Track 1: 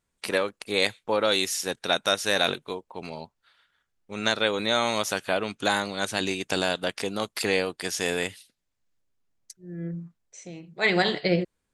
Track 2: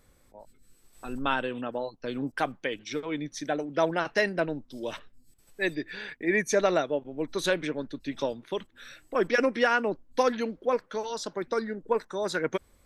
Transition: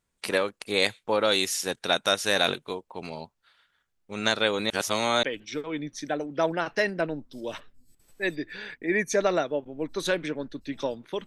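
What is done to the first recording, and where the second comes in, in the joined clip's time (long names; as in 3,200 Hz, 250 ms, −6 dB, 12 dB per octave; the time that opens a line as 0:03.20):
track 1
0:04.70–0:05.23: reverse
0:05.23: continue with track 2 from 0:02.62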